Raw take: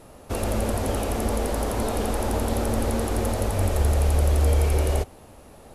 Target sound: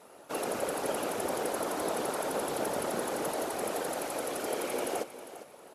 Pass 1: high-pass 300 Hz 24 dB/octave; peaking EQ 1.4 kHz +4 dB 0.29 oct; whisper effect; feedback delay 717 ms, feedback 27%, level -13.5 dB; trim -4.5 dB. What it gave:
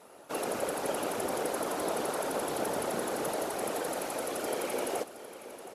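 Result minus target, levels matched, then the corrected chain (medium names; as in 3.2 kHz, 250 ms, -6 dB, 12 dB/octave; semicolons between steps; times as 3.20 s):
echo 315 ms late
high-pass 300 Hz 24 dB/octave; peaking EQ 1.4 kHz +4 dB 0.29 oct; whisper effect; feedback delay 402 ms, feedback 27%, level -13.5 dB; trim -4.5 dB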